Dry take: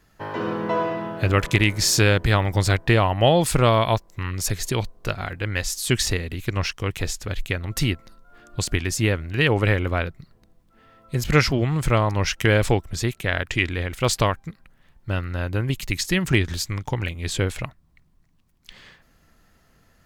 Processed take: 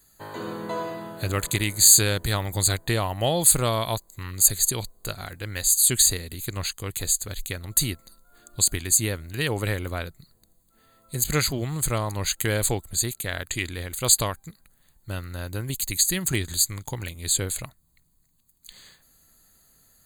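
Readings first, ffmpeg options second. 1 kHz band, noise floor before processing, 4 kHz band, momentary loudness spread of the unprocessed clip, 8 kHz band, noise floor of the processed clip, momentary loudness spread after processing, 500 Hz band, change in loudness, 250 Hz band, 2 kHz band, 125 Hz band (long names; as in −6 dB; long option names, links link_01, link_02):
−7.0 dB, −60 dBFS, 0.0 dB, 11 LU, +9.5 dB, −64 dBFS, 17 LU, −7.0 dB, 0.0 dB, −7.0 dB, −7.5 dB, −7.0 dB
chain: -af "aexciter=amount=6.1:drive=6.7:freq=4100,asuperstop=centerf=5500:order=20:qfactor=3.6,volume=-7dB"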